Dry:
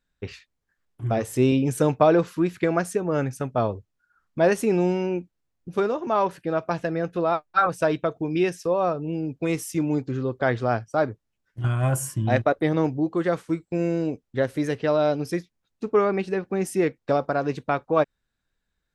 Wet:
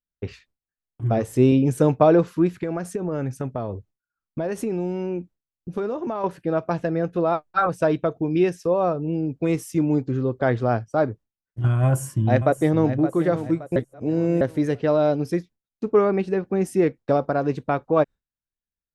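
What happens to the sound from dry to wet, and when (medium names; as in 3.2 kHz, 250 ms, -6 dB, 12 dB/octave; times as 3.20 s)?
2.53–6.24 s: compression, threshold -25 dBFS
11.84–12.90 s: echo throw 570 ms, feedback 40%, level -11 dB
13.76–14.41 s: reverse
whole clip: gate with hold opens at -49 dBFS; tilt shelf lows +4 dB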